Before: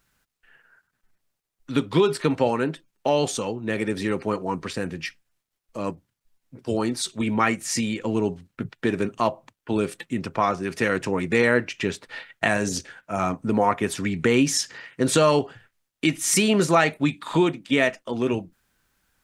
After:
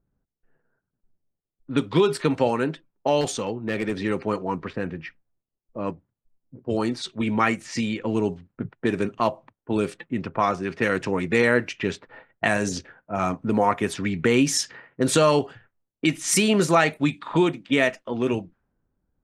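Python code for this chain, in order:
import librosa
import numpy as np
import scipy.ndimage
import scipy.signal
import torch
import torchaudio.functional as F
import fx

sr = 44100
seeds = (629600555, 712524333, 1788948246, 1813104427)

y = fx.env_lowpass(x, sr, base_hz=450.0, full_db=-19.0)
y = fx.overload_stage(y, sr, gain_db=19.0, at=(3.21, 4.0))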